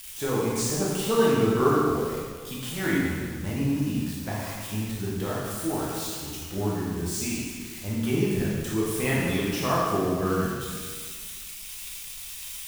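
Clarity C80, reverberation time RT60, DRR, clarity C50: 0.5 dB, 1.7 s, −6.5 dB, −1.5 dB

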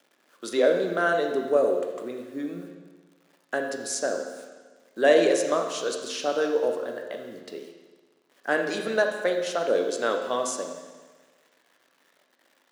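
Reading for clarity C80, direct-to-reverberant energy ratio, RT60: 7.0 dB, 3.0 dB, 1.4 s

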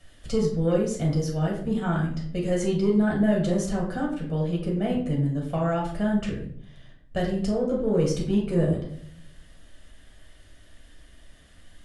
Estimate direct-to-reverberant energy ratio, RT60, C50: −3.0 dB, 0.65 s, 5.5 dB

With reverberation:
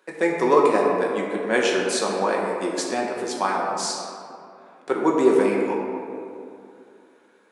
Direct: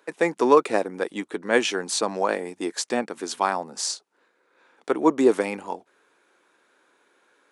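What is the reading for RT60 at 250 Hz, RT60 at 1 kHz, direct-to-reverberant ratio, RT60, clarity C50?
2.9 s, 2.5 s, −2.5 dB, 2.6 s, 1.0 dB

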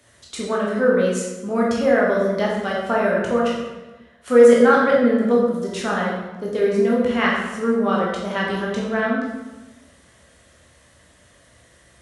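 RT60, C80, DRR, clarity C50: 1.1 s, 3.5 dB, −4.5 dB, 0.5 dB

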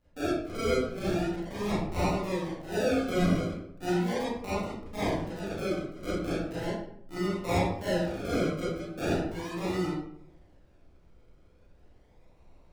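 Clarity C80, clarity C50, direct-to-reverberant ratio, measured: 3.5 dB, −1.0 dB, −11.5 dB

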